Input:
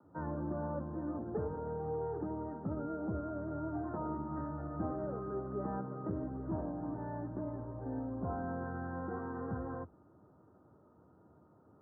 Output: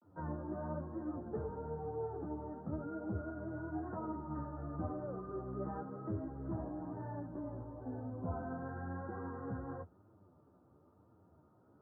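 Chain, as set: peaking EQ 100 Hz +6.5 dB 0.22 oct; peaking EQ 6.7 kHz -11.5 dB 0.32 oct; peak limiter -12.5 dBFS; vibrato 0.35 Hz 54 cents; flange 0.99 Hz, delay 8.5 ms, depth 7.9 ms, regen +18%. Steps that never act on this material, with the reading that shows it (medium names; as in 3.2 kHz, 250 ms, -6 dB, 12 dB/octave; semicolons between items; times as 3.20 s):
peaking EQ 6.7 kHz: input has nothing above 1.6 kHz; peak limiter -12.5 dBFS: peak at its input -24.5 dBFS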